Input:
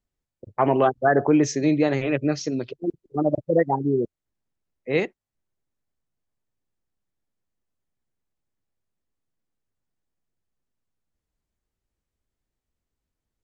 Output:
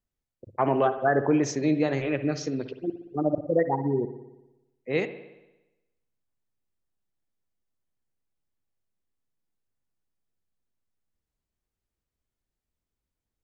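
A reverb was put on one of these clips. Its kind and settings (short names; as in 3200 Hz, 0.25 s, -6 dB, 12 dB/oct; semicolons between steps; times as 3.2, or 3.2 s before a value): spring tank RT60 1 s, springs 58 ms, chirp 45 ms, DRR 10.5 dB; gain -4 dB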